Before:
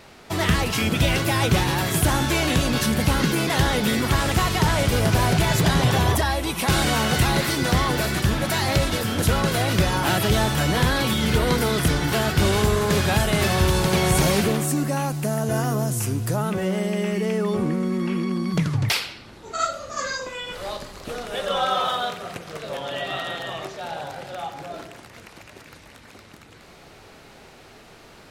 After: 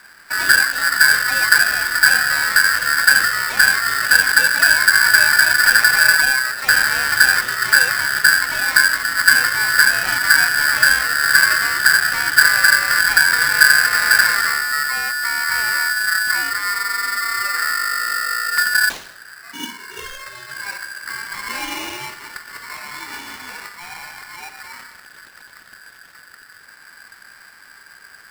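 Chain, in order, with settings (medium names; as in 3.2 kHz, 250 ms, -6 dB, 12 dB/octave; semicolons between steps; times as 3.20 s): RIAA curve playback; polarity switched at an audio rate 1.6 kHz; trim -5 dB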